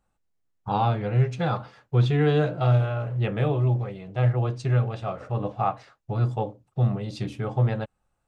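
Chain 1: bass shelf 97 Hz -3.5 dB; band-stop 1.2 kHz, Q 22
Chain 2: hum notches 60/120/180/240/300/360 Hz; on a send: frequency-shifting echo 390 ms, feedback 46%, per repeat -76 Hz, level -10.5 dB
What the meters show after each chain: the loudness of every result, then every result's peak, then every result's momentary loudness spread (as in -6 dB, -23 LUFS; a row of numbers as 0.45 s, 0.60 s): -26.5 LUFS, -27.0 LUFS; -11.0 dBFS, -10.5 dBFS; 10 LU, 9 LU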